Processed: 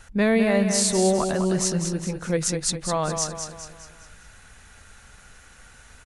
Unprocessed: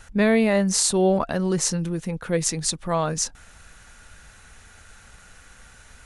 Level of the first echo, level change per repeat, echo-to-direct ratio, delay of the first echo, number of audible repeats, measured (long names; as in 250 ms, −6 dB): −7.0 dB, −6.5 dB, −6.0 dB, 204 ms, 5